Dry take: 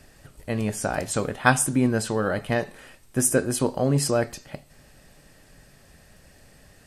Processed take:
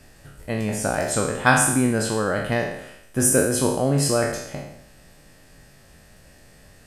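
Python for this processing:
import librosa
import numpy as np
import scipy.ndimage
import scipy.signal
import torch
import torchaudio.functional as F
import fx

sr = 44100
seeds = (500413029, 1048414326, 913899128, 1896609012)

y = fx.spec_trails(x, sr, decay_s=0.79)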